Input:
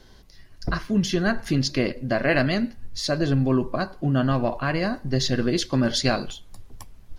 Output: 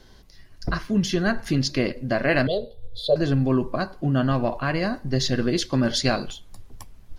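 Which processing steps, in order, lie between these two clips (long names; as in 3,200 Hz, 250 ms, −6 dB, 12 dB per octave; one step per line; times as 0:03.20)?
0:02.47–0:03.16: drawn EQ curve 120 Hz 0 dB, 280 Hz −23 dB, 460 Hz +15 dB, 1,600 Hz −29 dB, 2,400 Hz −28 dB, 3,500 Hz +10 dB, 5,800 Hz −26 dB, 10,000 Hz −7 dB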